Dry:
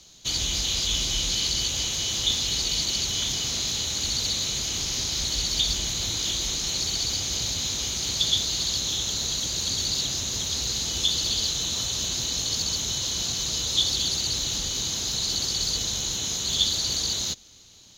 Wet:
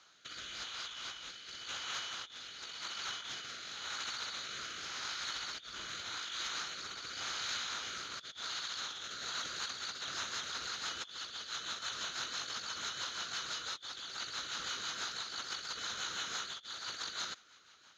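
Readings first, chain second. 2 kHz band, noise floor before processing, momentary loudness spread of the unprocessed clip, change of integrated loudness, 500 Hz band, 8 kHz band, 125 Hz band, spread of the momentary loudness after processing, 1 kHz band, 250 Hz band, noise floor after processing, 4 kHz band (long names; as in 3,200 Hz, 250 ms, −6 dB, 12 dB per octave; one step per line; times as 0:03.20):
−3.0 dB, −31 dBFS, 4 LU, −15.5 dB, −13.5 dB, −19.5 dB, −26.5 dB, 5 LU, −1.0 dB, −19.5 dB, −60 dBFS, −15.5 dB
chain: resonant band-pass 1,400 Hz, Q 4.5
compressor whose output falls as the input rises −50 dBFS, ratio −0.5
rotating-speaker cabinet horn 0.9 Hz, later 6 Hz, at 0:09.01
level +11 dB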